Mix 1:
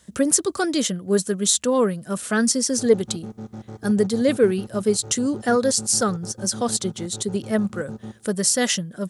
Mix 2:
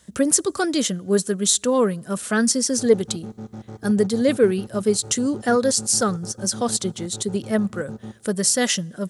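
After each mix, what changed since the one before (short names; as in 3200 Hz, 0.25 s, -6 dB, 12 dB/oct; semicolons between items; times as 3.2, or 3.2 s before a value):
speech: send on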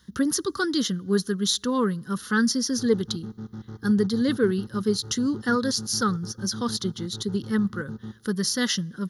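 master: add fixed phaser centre 2400 Hz, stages 6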